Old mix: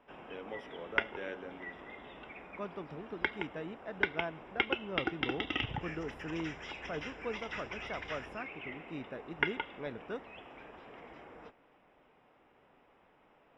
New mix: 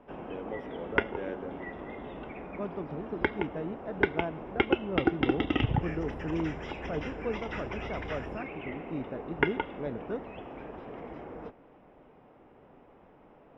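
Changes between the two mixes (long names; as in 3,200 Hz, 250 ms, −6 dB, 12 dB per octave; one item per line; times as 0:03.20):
background +5.0 dB
master: add tilt shelving filter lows +8 dB, about 1,100 Hz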